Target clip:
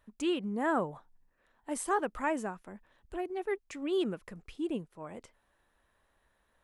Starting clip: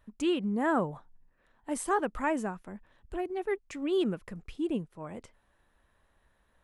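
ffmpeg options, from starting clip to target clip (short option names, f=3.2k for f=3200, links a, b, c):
-af "bass=f=250:g=-5,treble=f=4k:g=1,volume=-1.5dB"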